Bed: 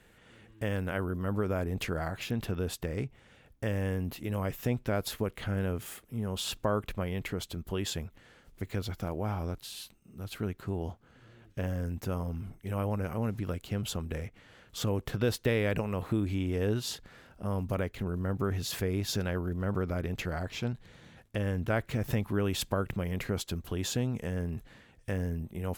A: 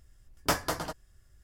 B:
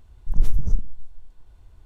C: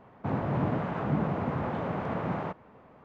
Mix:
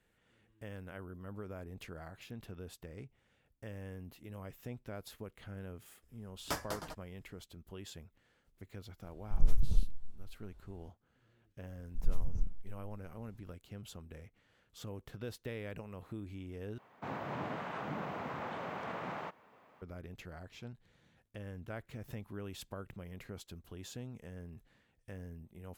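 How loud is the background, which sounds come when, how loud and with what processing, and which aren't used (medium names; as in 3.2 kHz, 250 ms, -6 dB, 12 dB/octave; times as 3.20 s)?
bed -14.5 dB
6.02 s: add A -10 dB
9.04 s: add B -8 dB
11.68 s: add B -13 dB
16.78 s: replace with C -6 dB + tilt EQ +3.5 dB/octave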